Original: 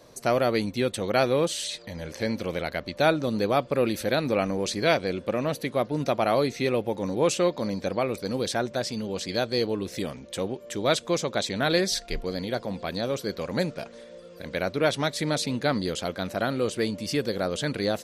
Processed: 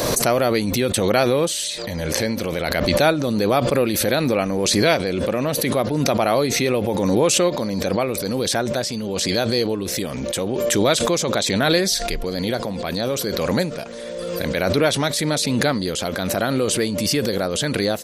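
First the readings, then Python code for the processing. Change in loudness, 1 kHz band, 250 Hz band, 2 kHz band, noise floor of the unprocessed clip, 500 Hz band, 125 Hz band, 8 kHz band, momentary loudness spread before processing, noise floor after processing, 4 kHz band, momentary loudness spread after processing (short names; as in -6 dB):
+6.5 dB, +5.0 dB, +7.0 dB, +6.0 dB, -47 dBFS, +5.5 dB, +7.5 dB, +12.5 dB, 8 LU, -28 dBFS, +8.5 dB, 7 LU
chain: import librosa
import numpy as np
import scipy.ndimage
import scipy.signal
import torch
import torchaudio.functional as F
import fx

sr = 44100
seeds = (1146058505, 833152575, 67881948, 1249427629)

y = fx.high_shelf(x, sr, hz=8700.0, db=10.0)
y = fx.pre_swell(y, sr, db_per_s=21.0)
y = F.gain(torch.from_numpy(y), 4.0).numpy()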